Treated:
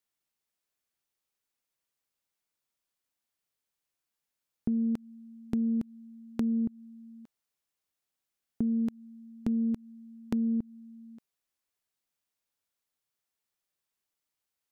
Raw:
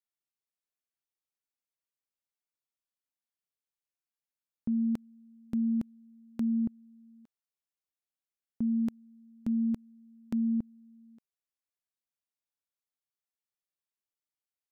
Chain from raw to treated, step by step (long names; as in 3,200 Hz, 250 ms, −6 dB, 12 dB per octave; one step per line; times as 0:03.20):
downward compressor 5 to 1, threshold −34 dBFS, peak gain reduction 7 dB
highs frequency-modulated by the lows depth 0.14 ms
level +7 dB